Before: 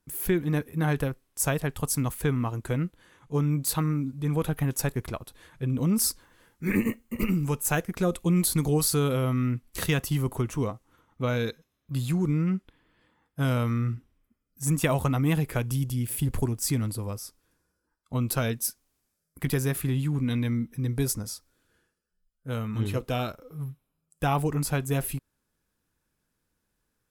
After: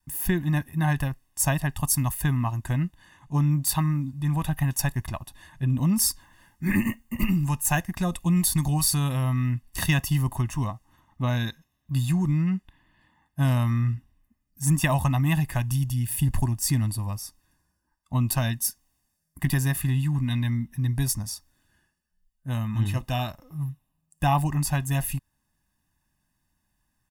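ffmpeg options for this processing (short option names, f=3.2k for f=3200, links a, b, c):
-filter_complex "[0:a]asettb=1/sr,asplit=3[a][b][c];[a]atrim=end=1.824[d];[b]atrim=start=1.82:end=2.37,asetpts=PTS-STARTPTS,afade=t=in:d=0.004:c=qsin,afade=t=out:st=0.546:d=0.004:c=qsin,equalizer=f=13k:t=o:w=0.53:g=6[e];[c]atrim=start=2.366[f];[d][e]acrossfade=d=0.004:c1=hsin:c2=qsin[g];[g][f]acrossfade=d=0.004:c1=qsin:c2=hsin,bandreject=f=4k:w=17,aecho=1:1:1.1:0.92,adynamicequalizer=threshold=0.0141:dfrequency=310:dqfactor=0.79:tfrequency=310:tqfactor=0.79:attack=5:release=100:ratio=0.375:range=3:mode=cutabove:tftype=bell"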